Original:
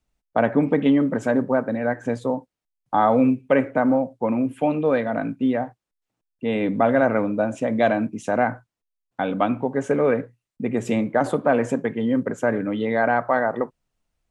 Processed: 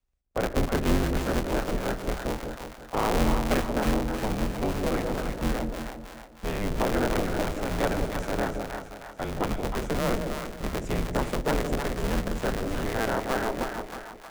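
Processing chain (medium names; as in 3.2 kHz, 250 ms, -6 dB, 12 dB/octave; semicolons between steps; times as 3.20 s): cycle switcher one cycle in 3, inverted; high-pass 44 Hz; peaking EQ 89 Hz +15 dB 0.79 oct; frequency shift -120 Hz; two-band feedback delay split 700 Hz, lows 176 ms, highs 314 ms, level -5 dB; trim -8.5 dB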